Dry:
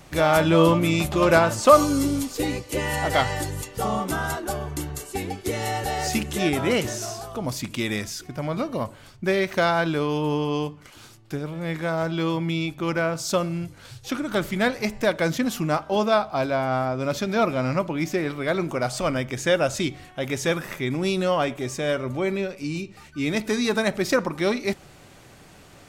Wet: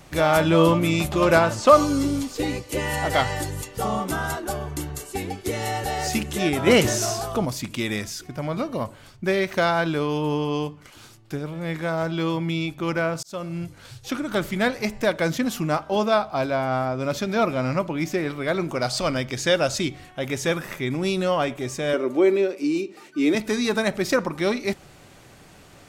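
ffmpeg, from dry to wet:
-filter_complex "[0:a]asettb=1/sr,asplit=3[a][b][c];[a]atrim=end=1.474[d];[b]atrim=start=1.47:end=2.54,asetpts=PTS-STARTPTS,afade=t=in:d=0.004:c=qsin,afade=t=out:st=1.066:d=0.004:c=qsin,acrossover=split=6900[e][f];[f]acompressor=threshold=-44dB:ratio=4:attack=1:release=60[g];[e][g]amix=inputs=2:normalize=0[h];[c]atrim=start=2.536[i];[d][h]acrossfade=d=0.004:c1=hsin:c2=qsin[j];[j][i]acrossfade=d=0.004:c1=qsin:c2=hsin,asplit=3[k][l][m];[k]afade=t=out:st=6.66:d=0.02[n];[l]acontrast=74,afade=t=in:st=6.66:d=0.02,afade=t=out:st=7.44:d=0.02[o];[m]afade=t=in:st=7.44:d=0.02[p];[n][o][p]amix=inputs=3:normalize=0,asettb=1/sr,asplit=3[q][r][s];[q]atrim=end=18.754[t];[r]atrim=start=18.75:end=19.78,asetpts=PTS-STARTPTS,afade=t=in:d=0.004:c=qsin,afade=t=out:st=1.026:d=0.004:c=qsin,equalizer=f=4.5k:w=1.8:g=8.5[u];[s]atrim=start=19.776[v];[t][u]acrossfade=d=0.004:c1=hsin:c2=qsin[w];[w][v]acrossfade=d=0.004:c1=qsin:c2=hsin,asettb=1/sr,asplit=3[x][y][z];[x]atrim=end=21.934[aa];[y]atrim=start=21.93:end=23.35,asetpts=PTS-STARTPTS,afade=t=in:d=0.004:c=qsin,afade=t=out:st=1.416:d=0.004:c=qsin,highpass=f=330:t=q:w=3.4[ab];[z]atrim=start=23.346[ac];[aa][ab]acrossfade=d=0.004:c1=hsin:c2=qsin[ad];[ad][ac]acrossfade=d=0.004:c1=qsin:c2=hsin,asplit=2[ae][af];[ae]atrim=end=13.23,asetpts=PTS-STARTPTS,afade=t=out:st=13.226:d=0.004:c=hsin[ag];[af]atrim=start=13.23,asetpts=PTS-STARTPTS,afade=t=in:d=0.4[ah];[ag][ah]concat=n=2:v=0:a=1"

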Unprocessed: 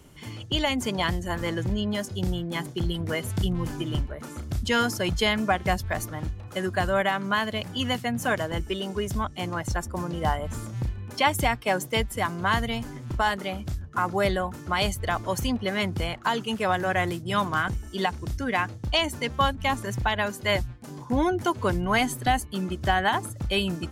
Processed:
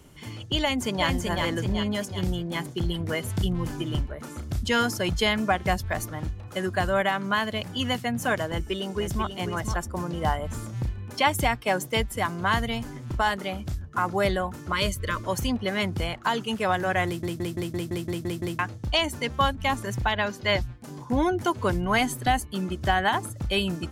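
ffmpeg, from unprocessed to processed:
-filter_complex "[0:a]asplit=2[a][b];[b]afade=t=in:st=0.62:d=0.01,afade=t=out:st=1.07:d=0.01,aecho=0:1:380|760|1140|1520|1900|2280|2660:0.668344|0.334172|0.167086|0.083543|0.0417715|0.0208857|0.0104429[c];[a][c]amix=inputs=2:normalize=0,asplit=2[d][e];[e]afade=t=in:st=8.48:d=0.01,afade=t=out:st=9.26:d=0.01,aecho=0:1:490|980:0.398107|0.0398107[f];[d][f]amix=inputs=2:normalize=0,asettb=1/sr,asplit=3[g][h][i];[g]atrim=end=14.724[j];[h]atrim=start=14.72:end=15.24,asetpts=PTS-STARTPTS,afade=t=in:d=0.004:c=qsin,afade=t=out:st=0.516:d=0.004:c=qsin,asuperstop=centerf=760:order=20:qfactor=2.7[k];[i]atrim=start=15.236[l];[j][k]acrossfade=d=0.004:c1=hsin:c2=qsin[m];[m][l]acrossfade=d=0.004:c1=qsin:c2=hsin,asettb=1/sr,asplit=3[n][o][p];[n]atrim=end=20.124[q];[o]atrim=start=20.12:end=20.62,asetpts=PTS-STARTPTS,afade=t=in:d=0.004:c=qsin,afade=t=out:st=0.496:d=0.004:c=qsin,highshelf=f=6.8k:t=q:w=1.5:g=-8.5[r];[p]atrim=start=20.616[s];[q][r]acrossfade=d=0.004:c1=hsin:c2=qsin[t];[t][s]acrossfade=d=0.004:c1=qsin:c2=hsin,asplit=10[u][v][w][x][y][z][aa][ab][ac][ad];[u]atrim=end=17.232[ae];[v]atrim=start=17.058:end=17.232[af];[w]atrim=start=17.058:end=17.232[ag];[x]atrim=start=17.058:end=17.232[ah];[y]atrim=start=17.058:end=17.232[ai];[z]atrim=start=17.058:end=17.232[aj];[aa]atrim=start=17.058:end=17.232[ak];[ab]atrim=start=17.058:end=17.232[al];[ac]atrim=start=17.058:end=17.232[am];[ad]atrim=start=18.588[an];[ae][af]acrossfade=d=0.004:c1=hsin:c2=hsin[ao];[ao][ag]acrossfade=d=0.004:c1=hsin:c2=hsin[ap];[ap][ah]acrossfade=d=0.004:c1=hsin:c2=hsin[aq];[aq][ai]acrossfade=d=0.004:c1=hsin:c2=hsin[ar];[ar][aj]acrossfade=d=0.004:c1=hsin:c2=hsin[as];[as][ak]acrossfade=d=0.004:c1=hsin:c2=hsin[at];[at][al]acrossfade=d=0.004:c1=hsin:c2=hsin[au];[au][am]acrossfade=d=0.004:c1=hsin:c2=hsin[av];[av][an]acrossfade=d=0.004:c1=hsin:c2=hsin"

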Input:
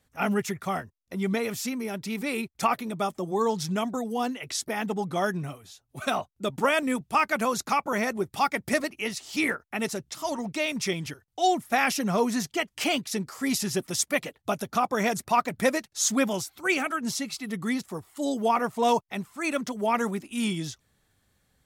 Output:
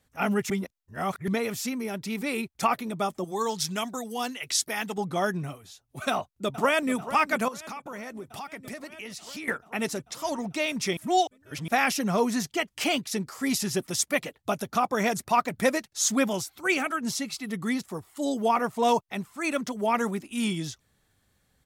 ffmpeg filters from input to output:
-filter_complex "[0:a]asettb=1/sr,asplit=3[a][b][c];[a]atrim=end=3.244[d];[b]atrim=start=3.24:end=4.98,asetpts=PTS-STARTPTS,afade=t=in:d=0.004:c=qsin,afade=t=out:st=1.736:d=0.004:c=qsin,tiltshelf=f=1.3k:g=-6[e];[c]atrim=start=4.976[f];[d][e]acrossfade=d=0.004:c1=hsin:c2=qsin[g];[g][f]acrossfade=d=0.004:c1=qsin:c2=hsin,asplit=2[h][i];[i]afade=t=in:st=6.1:d=0.01,afade=t=out:st=6.93:d=0.01,aecho=0:1:440|880|1320|1760|2200|2640|3080|3520|3960|4400|4840:0.223872|0.167904|0.125928|0.094446|0.0708345|0.0531259|0.0398444|0.0298833|0.0224125|0.0168094|0.012607[j];[h][j]amix=inputs=2:normalize=0,asettb=1/sr,asplit=3[k][l][m];[k]atrim=end=7.484[n];[l]atrim=start=7.48:end=9.48,asetpts=PTS-STARTPTS,afade=t=in:d=0.004:c=qsin,afade=t=out:st=1.996:d=0.004:c=qsin,acompressor=threshold=-36dB:ratio=5:attack=3.2:release=140:knee=1:detection=peak[o];[m]atrim=start=9.476[p];[n][o]acrossfade=d=0.004:c1=hsin:c2=qsin[q];[q][p]acrossfade=d=0.004:c1=qsin:c2=hsin,asplit=5[r][s][t][u][v];[r]atrim=end=0.502[w];[s]atrim=start=0.498:end=1.282,asetpts=PTS-STARTPTS,areverse[x];[t]atrim=start=1.278:end=10.972[y];[u]atrim=start=10.968:end=11.682,asetpts=PTS-STARTPTS,areverse[z];[v]atrim=start=11.678[aa];[w][x]acrossfade=d=0.004:c1=hsin:c2=hsin[ab];[ab][y]acrossfade=d=0.004:c1=hsin:c2=hsin[ac];[ac][z]acrossfade=d=0.004:c1=hsin:c2=hsin[ad];[ad][aa]acrossfade=d=0.004:c1=hsin:c2=hsin"

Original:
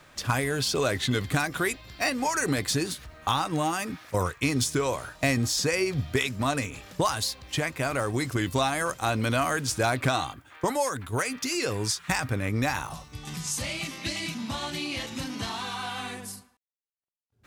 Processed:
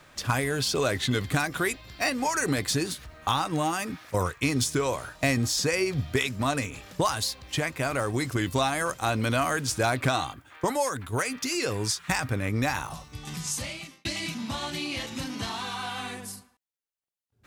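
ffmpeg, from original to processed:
-filter_complex "[0:a]asplit=2[a][b];[a]atrim=end=14.05,asetpts=PTS-STARTPTS,afade=t=out:st=13.52:d=0.53[c];[b]atrim=start=14.05,asetpts=PTS-STARTPTS,afade=t=in:d=0.004:c=hsin[d];[c][d]concat=n=2:v=0:a=1"

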